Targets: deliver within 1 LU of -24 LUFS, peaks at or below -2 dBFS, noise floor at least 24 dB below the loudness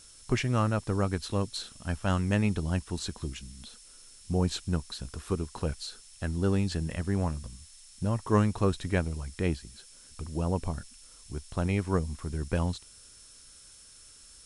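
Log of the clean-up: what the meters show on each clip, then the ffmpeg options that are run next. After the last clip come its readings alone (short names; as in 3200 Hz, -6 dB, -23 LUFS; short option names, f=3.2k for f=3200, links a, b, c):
steady tone 5400 Hz; tone level -58 dBFS; noise floor -53 dBFS; noise floor target -55 dBFS; loudness -31.0 LUFS; peak -10.0 dBFS; loudness target -24.0 LUFS
-> -af "bandreject=f=5.4k:w=30"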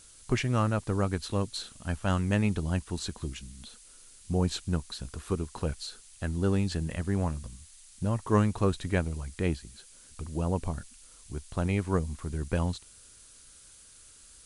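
steady tone none; noise floor -54 dBFS; noise floor target -55 dBFS
-> -af "afftdn=nr=6:nf=-54"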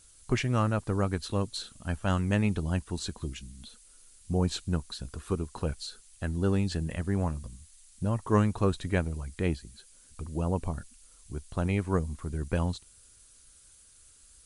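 noise floor -58 dBFS; loudness -31.0 LUFS; peak -10.0 dBFS; loudness target -24.0 LUFS
-> -af "volume=7dB"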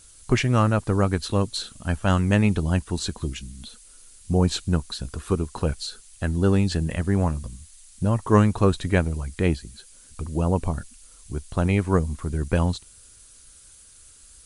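loudness -24.0 LUFS; peak -3.0 dBFS; noise floor -51 dBFS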